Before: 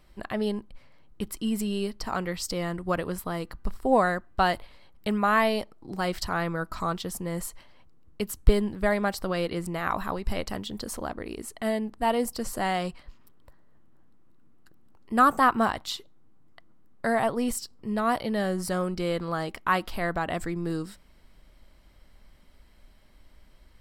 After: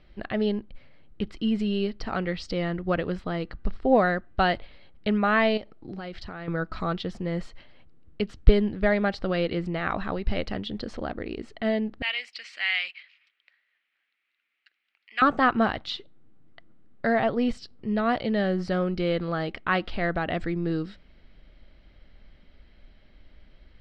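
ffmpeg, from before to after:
-filter_complex "[0:a]asettb=1/sr,asplit=3[a][b][c];[a]atrim=end=5.574[d];[b]atrim=start=5.57:end=6.48,asetpts=PTS-STARTPTS,afade=t=in:d=0.004:c=qsin,afade=t=out:st=0.906:d=0.004:c=qsin,acompressor=threshold=-35dB:ratio=6:attack=3.2:release=140:knee=1:detection=peak[e];[c]atrim=start=6.476[f];[d][e]acrossfade=d=0.004:c1=hsin:c2=qsin[g];[g][f]acrossfade=d=0.004:c1=qsin:c2=hsin,asettb=1/sr,asplit=3[h][i][j];[h]atrim=end=12.024[k];[i]atrim=start=12.02:end=15.22,asetpts=PTS-STARTPTS,afade=t=in:d=0.004:c=qsin,afade=t=out:st=3.196:d=0.004:c=qsin,highpass=f=2.3k:t=q:w=4.1[l];[j]atrim=start=15.216[m];[k][l]acrossfade=d=0.004:c1=hsin:c2=qsin[n];[n][m]acrossfade=d=0.004:c1=qsin:c2=hsin,lowpass=f=4.1k:w=0.5412,lowpass=f=4.1k:w=1.3066,equalizer=f=1k:w=2.8:g=-9.5,volume=3dB"

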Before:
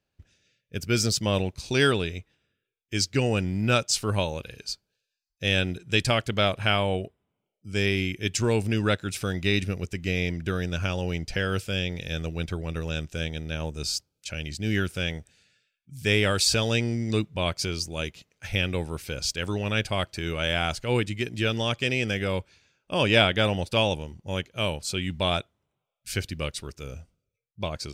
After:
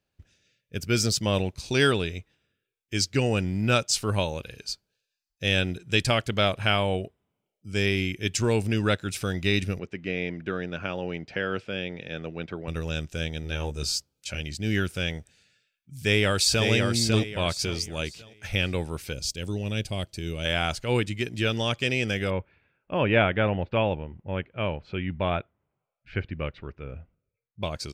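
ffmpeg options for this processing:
-filter_complex "[0:a]asettb=1/sr,asplit=3[a][b][c];[a]atrim=end=9.794[d];[b]atrim=start=9.79:end=12.68,asetpts=PTS-STARTPTS,afade=t=in:d=0.004:c=qsin,afade=t=out:st=2.886:d=0.004:c=qsin,highpass=190,lowpass=2.5k[e];[c]atrim=start=12.676[f];[d][e]acrossfade=d=0.004:c1=hsin:c2=qsin[g];[g][f]acrossfade=d=0.004:c1=qsin:c2=hsin,asettb=1/sr,asplit=3[h][i][j];[h]atrim=end=13.424[k];[i]atrim=start=13.42:end=14.41,asetpts=PTS-STARTPTS,afade=t=in:d=0.004:c=qsin,afade=t=out:st=0.986:d=0.004:c=qsin,asplit=2[l][m];[m]adelay=15,volume=-5dB[n];[l][n]amix=inputs=2:normalize=0,atrim=end_sample=43659[o];[j]atrim=start=14.406[p];[k][o]acrossfade=d=0.004:c1=hsin:c2=qsin[q];[q][p]acrossfade=d=0.004:c1=qsin:c2=hsin,asplit=2[r][s];[s]afade=t=in:st=15.97:d=0.01,afade=t=out:st=16.68:d=0.01,aecho=0:1:550|1100|1650|2200:0.630957|0.189287|0.0567862|0.0170358[t];[r][t]amix=inputs=2:normalize=0,asettb=1/sr,asplit=3[u][v][w];[u]atrim=end=19.134[x];[v]atrim=start=19.13:end=20.45,asetpts=PTS-STARTPTS,afade=t=in:d=0.004:c=qsin,afade=t=out:st=1.316:d=0.004:c=qsin,equalizer=f=1.3k:w=0.66:g=-13[y];[w]atrim=start=20.446[z];[x][y]acrossfade=d=0.004:c1=hsin:c2=qsin[aa];[aa][z]acrossfade=d=0.004:c1=qsin:c2=hsin,asettb=1/sr,asplit=3[ab][ac][ad];[ab]atrim=end=22.304[ae];[ac]atrim=start=22.3:end=27.63,asetpts=PTS-STARTPTS,afade=t=in:d=0.004:c=qsin,afade=t=out:st=5.326:d=0.004:c=qsin,lowpass=f=2.4k:w=0.5412,lowpass=f=2.4k:w=1.3066[af];[ad]atrim=start=27.626[ag];[ae][af]acrossfade=d=0.004:c1=hsin:c2=qsin[ah];[ah][ag]acrossfade=d=0.004:c1=qsin:c2=hsin"

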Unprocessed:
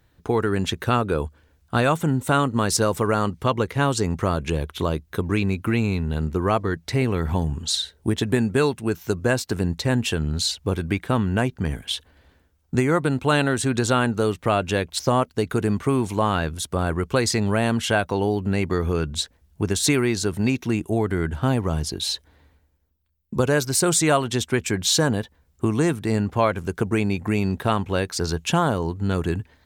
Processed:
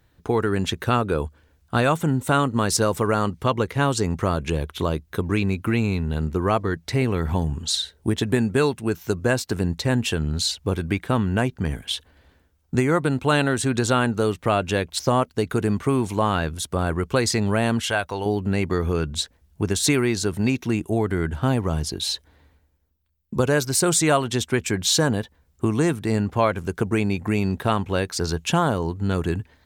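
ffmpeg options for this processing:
-filter_complex "[0:a]asettb=1/sr,asplit=3[a][b][c];[a]atrim=end=17.804[d];[b]atrim=start=17.8:end=18.26,asetpts=PTS-STARTPTS,afade=t=in:d=0.004:c=qsin,afade=t=out:st=0.456:d=0.004:c=qsin,equalizer=f=210:w=0.51:g=-9[e];[c]atrim=start=18.256[f];[d][e]acrossfade=d=0.004:c1=hsin:c2=qsin[g];[g][f]acrossfade=d=0.004:c1=qsin:c2=hsin"

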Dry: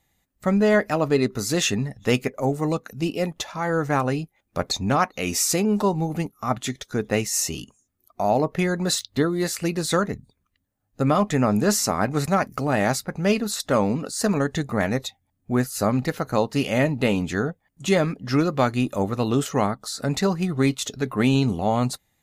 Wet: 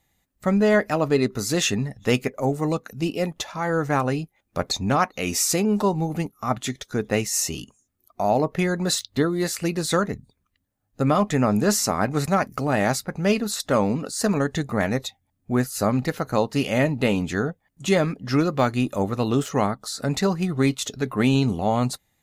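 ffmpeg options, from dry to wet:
-filter_complex "[0:a]asettb=1/sr,asplit=3[a][b][c];[a]atrim=end=18.324[d];[b]atrim=start=18.32:end=19.47,asetpts=PTS-STARTPTS,afade=t=in:d=0.004:c=qsin,afade=t=out:st=1.146:d=0.004:c=qsin,deesser=0.6[e];[c]atrim=start=19.466[f];[d][e]acrossfade=d=0.004:c1=hsin:c2=qsin[g];[g][f]acrossfade=d=0.004:c1=qsin:c2=hsin"

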